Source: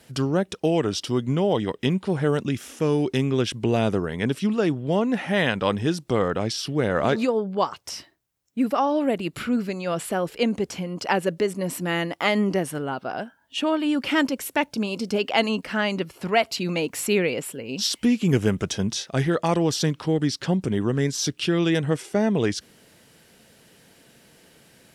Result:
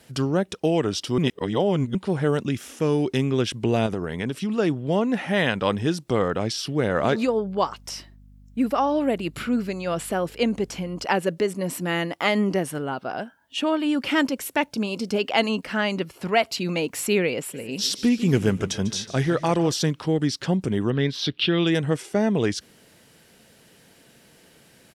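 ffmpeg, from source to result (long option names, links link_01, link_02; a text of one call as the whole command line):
ffmpeg -i in.wav -filter_complex "[0:a]asettb=1/sr,asplit=3[link_01][link_02][link_03];[link_01]atrim=end=3.864[link_04];[link_02]atrim=start=3.86:end=4.56,asetpts=PTS-STARTPTS,afade=type=in:duration=0.004:curve=qsin,afade=type=out:start_time=0.696:duration=0.004:curve=qsin,acompressor=threshold=-22dB:ratio=6:attack=3.2:release=140:knee=1:detection=peak[link_05];[link_03]atrim=start=4.556[link_06];[link_04][link_05]acrossfade=duration=0.004:curve1=hsin:curve2=qsin[link_07];[link_07][link_06]acrossfade=duration=0.004:curve1=qsin:curve2=hsin,asettb=1/sr,asplit=3[link_08][link_09][link_10];[link_08]atrim=end=7.264[link_11];[link_09]atrim=start=7.26:end=11.05,asetpts=PTS-STARTPTS,afade=type=in:duration=0.004:curve=qsin,afade=type=out:start_time=3.786:duration=0.004:curve=qsin,aeval=exprs='val(0)+0.00398*(sin(2*PI*50*n/s)+sin(2*PI*2*50*n/s)/2+sin(2*PI*3*50*n/s)/3+sin(2*PI*4*50*n/s)/4+sin(2*PI*5*50*n/s)/5)':channel_layout=same[link_12];[link_10]atrim=start=11.046[link_13];[link_11][link_12]acrossfade=duration=0.004:curve1=hsin:curve2=qsin[link_14];[link_14][link_13]acrossfade=duration=0.004:curve1=qsin:curve2=hsin,asplit=3[link_15][link_16][link_17];[link_15]afade=type=out:start_time=17.53:duration=0.02[link_18];[link_16]aecho=1:1:148|296|444|592:0.178|0.0836|0.0393|0.0185,afade=type=in:start_time=17.53:duration=0.02,afade=type=out:start_time=19.71:duration=0.02[link_19];[link_17]afade=type=in:start_time=19.71:duration=0.02[link_20];[link_18][link_19][link_20]amix=inputs=3:normalize=0,asettb=1/sr,asplit=3[link_21][link_22][link_23];[link_21]atrim=end=20.904[link_24];[link_22]atrim=start=20.9:end=21.67,asetpts=PTS-STARTPTS,afade=type=in:duration=0.004:curve=qsin,afade=type=out:start_time=0.766:duration=0.004:curve=qsin,highshelf=frequency=5200:width_type=q:width=3:gain=-12.5[link_25];[link_23]atrim=start=21.666[link_26];[link_24][link_25]acrossfade=duration=0.004:curve1=hsin:curve2=qsin[link_27];[link_27][link_26]acrossfade=duration=0.004:curve1=qsin:curve2=hsin,asplit=3[link_28][link_29][link_30];[link_28]atrim=end=1.182[link_31];[link_29]atrim=start=1.178:end=1.952,asetpts=PTS-STARTPTS,areverse[link_32];[link_30]atrim=start=1.948[link_33];[link_31][link_32]acrossfade=duration=0.004:curve1=hsin:curve2=hsin[link_34];[link_34][link_33]acrossfade=duration=0.004:curve1=hsin:curve2=hsin" out.wav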